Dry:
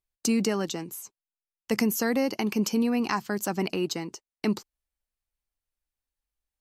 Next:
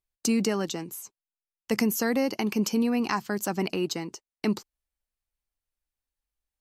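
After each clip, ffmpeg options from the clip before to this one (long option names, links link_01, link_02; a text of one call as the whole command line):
ffmpeg -i in.wav -af anull out.wav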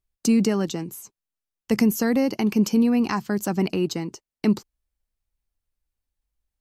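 ffmpeg -i in.wav -af "lowshelf=frequency=300:gain=10" out.wav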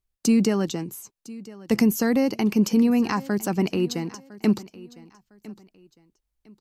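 ffmpeg -i in.wav -af "aecho=1:1:1006|2012:0.106|0.0297" out.wav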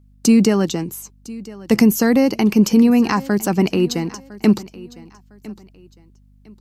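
ffmpeg -i in.wav -af "aeval=exprs='val(0)+0.00158*(sin(2*PI*50*n/s)+sin(2*PI*2*50*n/s)/2+sin(2*PI*3*50*n/s)/3+sin(2*PI*4*50*n/s)/4+sin(2*PI*5*50*n/s)/5)':channel_layout=same,volume=6.5dB" out.wav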